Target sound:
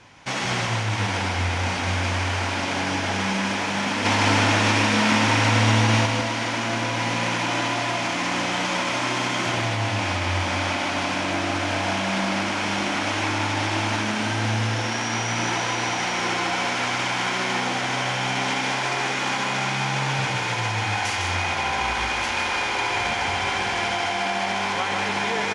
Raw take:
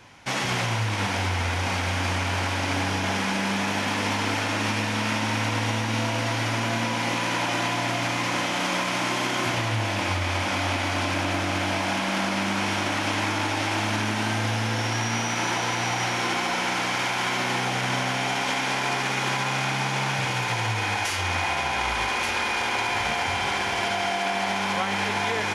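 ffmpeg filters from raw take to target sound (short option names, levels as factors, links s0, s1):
-filter_complex "[0:a]lowpass=f=9200:w=0.5412,lowpass=f=9200:w=1.3066,asettb=1/sr,asplit=3[s0][s1][s2];[s0]atrim=end=4.054[s3];[s1]atrim=start=4.05:end=6.06,asetpts=PTS-STARTPTS,afade=t=in:d=0.004:c=qsin,afade=t=out:st=2.006:d=0.004:c=qsin,acontrast=32[s4];[s2]atrim=start=6.056[s5];[s3][s4]acrossfade=d=0.004:c1=hsin:c2=qsin[s6];[s6][s5]acrossfade=d=0.004:c1=qsin:c2=hsin,asplit=2[s7][s8];[s8]aecho=0:1:155:0.596[s9];[s7][s9]amix=inputs=2:normalize=0"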